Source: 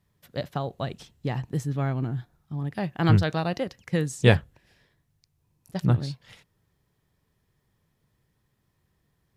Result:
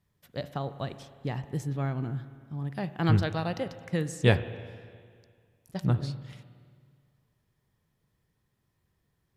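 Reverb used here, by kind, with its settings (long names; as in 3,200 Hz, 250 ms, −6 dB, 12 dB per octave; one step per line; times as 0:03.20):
spring reverb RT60 2 s, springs 36/50 ms, chirp 60 ms, DRR 12.5 dB
level −4 dB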